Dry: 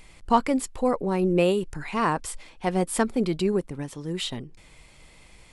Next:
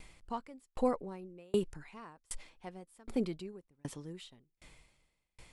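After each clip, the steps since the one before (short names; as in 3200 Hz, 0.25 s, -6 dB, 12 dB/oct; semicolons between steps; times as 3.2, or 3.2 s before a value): dB-ramp tremolo decaying 1.3 Hz, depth 38 dB; gain -2 dB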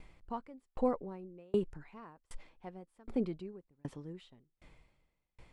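LPF 1400 Hz 6 dB/oct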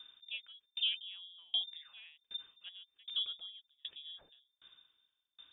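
inverted band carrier 3600 Hz; gain -4 dB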